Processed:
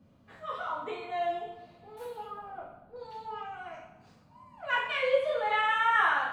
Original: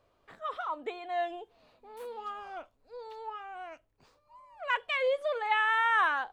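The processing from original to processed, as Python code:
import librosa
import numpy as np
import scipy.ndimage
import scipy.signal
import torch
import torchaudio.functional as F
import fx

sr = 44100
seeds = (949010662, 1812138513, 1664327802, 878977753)

y = fx.bessel_lowpass(x, sr, hz=1100.0, order=2, at=(2.24, 2.96))
y = fx.rev_double_slope(y, sr, seeds[0], early_s=0.71, late_s=2.1, knee_db=-18, drr_db=-7.0)
y = fx.dmg_noise_band(y, sr, seeds[1], low_hz=74.0, high_hz=260.0, level_db=-55.0)
y = F.gain(torch.from_numpy(y), -6.5).numpy()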